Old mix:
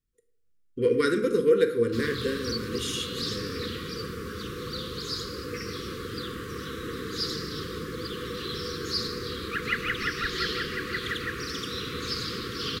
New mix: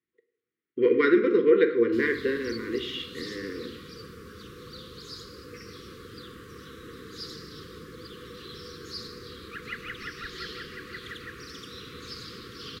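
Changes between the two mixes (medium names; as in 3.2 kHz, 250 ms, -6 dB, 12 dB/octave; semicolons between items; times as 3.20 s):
speech: add cabinet simulation 220–3600 Hz, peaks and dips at 350 Hz +10 dB, 620 Hz -7 dB, 1 kHz +5 dB, 2 kHz +10 dB; background -9.0 dB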